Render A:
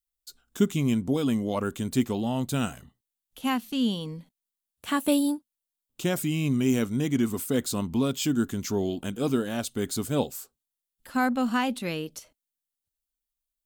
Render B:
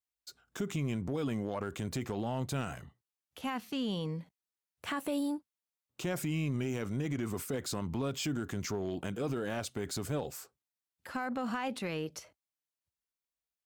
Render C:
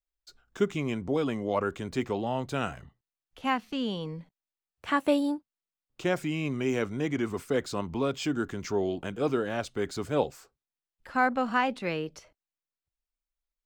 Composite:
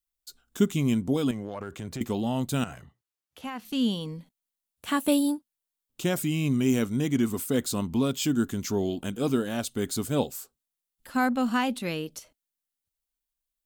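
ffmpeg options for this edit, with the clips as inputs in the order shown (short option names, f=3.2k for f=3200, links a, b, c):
-filter_complex "[1:a]asplit=2[a][b];[0:a]asplit=3[c][d][e];[c]atrim=end=1.312[f];[a]atrim=start=1.308:end=2.012[g];[d]atrim=start=2.008:end=2.642[h];[b]atrim=start=2.638:end=3.652[i];[e]atrim=start=3.648[j];[f][g]acrossfade=d=0.004:c1=hsin:c2=hsin[k];[k][h]acrossfade=d=0.004:c1=hsin:c2=hsin[l];[l][i]acrossfade=d=0.004:c1=hsin:c2=hsin[m];[m][j]acrossfade=d=0.004:c1=hsin:c2=hsin"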